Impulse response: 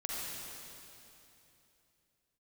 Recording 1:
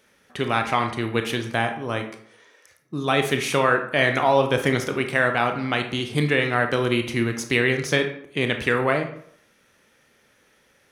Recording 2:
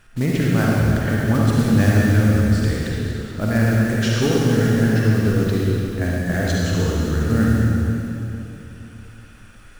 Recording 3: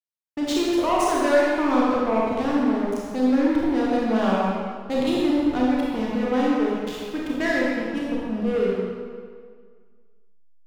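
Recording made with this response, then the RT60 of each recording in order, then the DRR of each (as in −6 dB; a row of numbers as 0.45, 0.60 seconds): 2; 0.65, 3.0, 1.9 seconds; 5.0, −5.0, −5.5 decibels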